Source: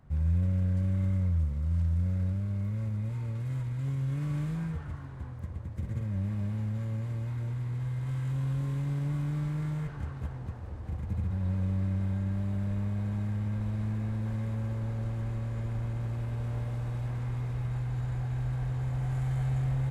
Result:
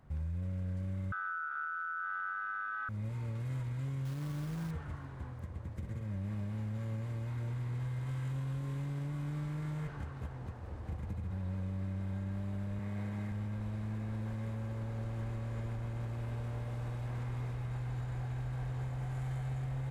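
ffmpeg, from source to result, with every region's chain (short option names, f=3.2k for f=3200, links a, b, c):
-filter_complex "[0:a]asettb=1/sr,asplit=3[a][b][c];[a]atrim=end=1.124[d];[b]atrim=start=1.12:end=2.89,asetpts=PTS-STARTPTS,afade=t=in:d=0.004:c=qsin,afade=t=out:st=1.766:d=0.004:c=qsin,adynamicsmooth=sensitivity=7.5:basefreq=2.7k,aeval=exprs='val(0)*sin(2*PI*1400*n/s)':c=same[e];[c]atrim=start=2.886[f];[d][e]acrossfade=d=0.004:c1=hsin:c2=qsin[g];[g][f]acrossfade=d=0.004:c1=qsin:c2=hsin,asettb=1/sr,asplit=3[h][i][j];[h]atrim=end=4.054[k];[i]atrim=start=4.05:end=4.71,asetpts=PTS-STARTPTS,afade=t=in:d=0.004:c=qsin,afade=t=out:st=0.656:d=0.004:c=qsin,lowpass=1.9k,acrusher=bits=5:mode=log:mix=0:aa=0.000001[l];[j]atrim=start=4.706[m];[k][l]acrossfade=d=0.004:c1=hsin:c2=qsin[n];[n][m]acrossfade=d=0.004:c1=qsin:c2=hsin,asettb=1/sr,asplit=3[o][p][q];[o]atrim=end=12.794[r];[p]atrim=start=12.79:end=13.32,asetpts=PTS-STARTPTS,afade=t=in:d=0.004:c=qsin,afade=t=out:st=0.526:d=0.004:c=qsin,highpass=96,equalizer=f=2k:t=o:w=0.3:g=6[s];[q]atrim=start=13.316[t];[r][s]acrossfade=d=0.004:c1=hsin:c2=qsin[u];[u][t]acrossfade=d=0.004:c1=qsin:c2=hsin,bass=f=250:g=-4,treble=f=4k:g=-1,alimiter=level_in=7dB:limit=-24dB:level=0:latency=1:release=228,volume=-7dB"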